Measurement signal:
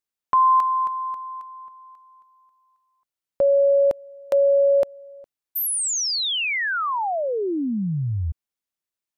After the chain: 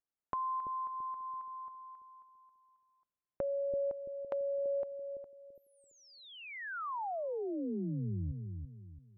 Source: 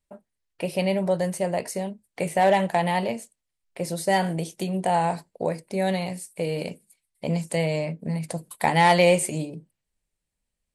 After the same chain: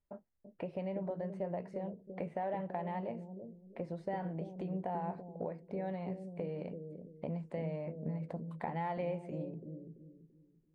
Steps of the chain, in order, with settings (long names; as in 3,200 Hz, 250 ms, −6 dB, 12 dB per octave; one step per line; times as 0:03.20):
downward compressor 3 to 1, threshold −36 dBFS
low-pass filter 1,400 Hz 12 dB per octave
bucket-brigade delay 335 ms, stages 1,024, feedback 35%, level −5 dB
level −3.5 dB